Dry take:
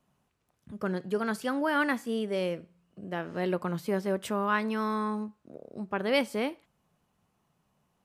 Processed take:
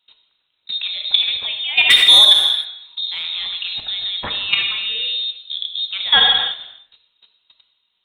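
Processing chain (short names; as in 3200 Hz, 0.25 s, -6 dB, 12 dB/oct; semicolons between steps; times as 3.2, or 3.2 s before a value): in parallel at -9.5 dB: hard clip -24.5 dBFS, distortion -13 dB; on the sum: inverted band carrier 3900 Hz; 1.9–2.33 sample leveller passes 2; 4.89–5.7 bell 520 Hz +14.5 dB 0.51 oct; level quantiser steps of 23 dB; non-linear reverb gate 0.34 s falling, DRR 4.5 dB; 3.05–3.48 transient shaper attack -11 dB, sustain +4 dB; maximiser +21.5 dB; gain -1 dB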